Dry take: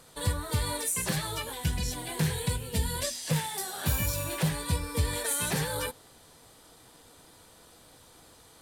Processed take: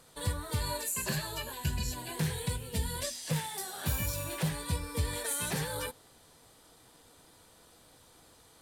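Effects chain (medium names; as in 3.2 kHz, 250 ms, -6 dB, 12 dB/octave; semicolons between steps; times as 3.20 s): 0.60–2.16 s: rippled EQ curve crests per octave 1.4, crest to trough 8 dB; trim -4 dB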